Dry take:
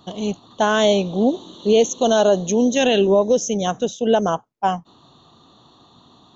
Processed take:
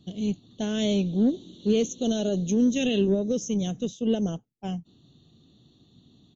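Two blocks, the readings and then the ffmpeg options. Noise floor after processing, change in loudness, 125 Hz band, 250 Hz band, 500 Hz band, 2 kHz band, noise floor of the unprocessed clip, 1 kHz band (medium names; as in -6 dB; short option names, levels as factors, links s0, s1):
-61 dBFS, -7.5 dB, -1.5 dB, -2.5 dB, -11.5 dB, -14.0 dB, -53 dBFS, -22.0 dB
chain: -af "firequalizer=gain_entry='entry(170,0);entry(1000,-29);entry(2200,-9)':delay=0.05:min_phase=1,aeval=exprs='0.251*(cos(1*acos(clip(val(0)/0.251,-1,1)))-cos(1*PI/2))+0.002*(cos(7*acos(clip(val(0)/0.251,-1,1)))-cos(7*PI/2))+0.00158*(cos(8*acos(clip(val(0)/0.251,-1,1)))-cos(8*PI/2))':c=same" -ar 22050 -c:a libmp3lame -b:a 40k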